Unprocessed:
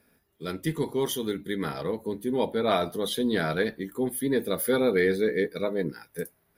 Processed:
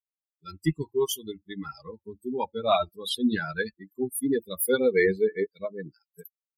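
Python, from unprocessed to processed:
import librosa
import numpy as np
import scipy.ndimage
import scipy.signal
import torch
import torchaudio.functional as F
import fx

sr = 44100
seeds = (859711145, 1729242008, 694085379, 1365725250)

y = fx.bin_expand(x, sr, power=3.0)
y = F.gain(torch.from_numpy(y), 6.5).numpy()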